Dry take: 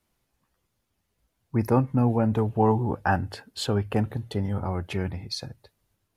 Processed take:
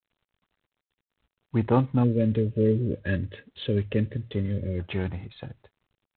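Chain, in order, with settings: spectral delete 2.04–4.8, 620–1600 Hz; G.726 24 kbps 8000 Hz

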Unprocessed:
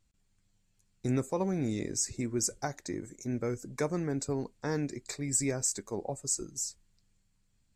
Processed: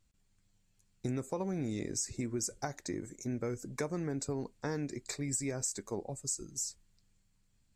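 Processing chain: 6.03–6.5 bell 760 Hz -7.5 dB 2.7 oct; compressor 5:1, threshold -32 dBFS, peak gain reduction 8 dB

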